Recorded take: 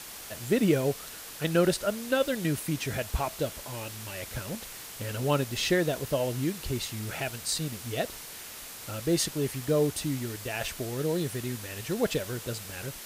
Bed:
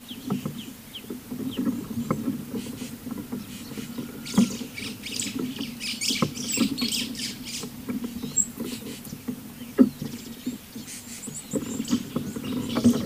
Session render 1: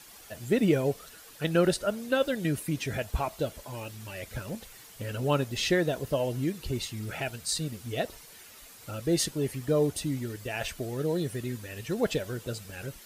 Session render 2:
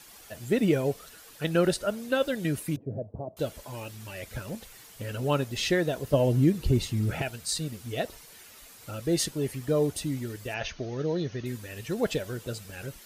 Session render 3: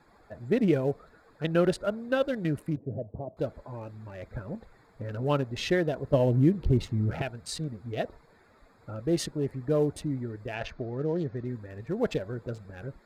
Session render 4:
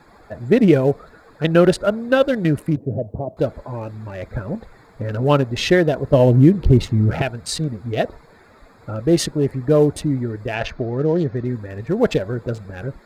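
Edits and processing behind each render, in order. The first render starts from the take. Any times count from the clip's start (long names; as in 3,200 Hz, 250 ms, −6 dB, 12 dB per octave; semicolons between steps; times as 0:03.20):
broadband denoise 10 dB, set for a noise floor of −43 dBFS
0:02.76–0:03.37: Chebyshev band-pass filter 100–600 Hz, order 3; 0:06.13–0:07.22: low-shelf EQ 470 Hz +10.5 dB; 0:10.54–0:11.46: linear-phase brick-wall low-pass 6,700 Hz
adaptive Wiener filter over 15 samples; high-shelf EQ 5,700 Hz −11 dB
level +11 dB; brickwall limiter −2 dBFS, peak gain reduction 2 dB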